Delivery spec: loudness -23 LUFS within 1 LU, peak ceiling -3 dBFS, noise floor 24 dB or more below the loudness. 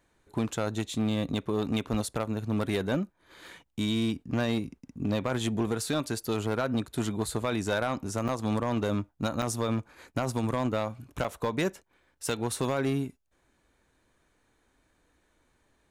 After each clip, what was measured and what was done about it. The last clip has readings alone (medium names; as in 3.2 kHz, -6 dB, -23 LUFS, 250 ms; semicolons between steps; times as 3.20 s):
clipped samples 0.9%; clipping level -21.0 dBFS; dropouts 3; longest dropout 5.8 ms; loudness -31.0 LUFS; peak level -21.0 dBFS; loudness target -23.0 LUFS
-> clip repair -21 dBFS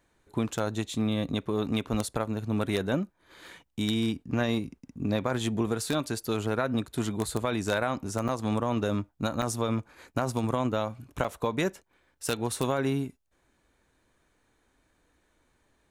clipped samples 0.0%; dropouts 3; longest dropout 5.8 ms
-> interpolate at 8.28/9.42/11.24 s, 5.8 ms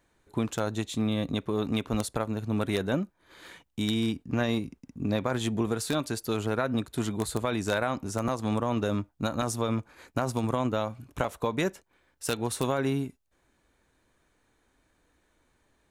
dropouts 0; loudness -30.0 LUFS; peak level -12.0 dBFS; loudness target -23.0 LUFS
-> trim +7 dB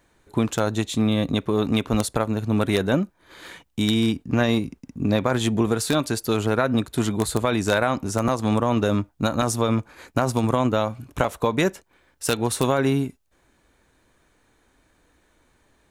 loudness -23.0 LUFS; peak level -5.0 dBFS; noise floor -64 dBFS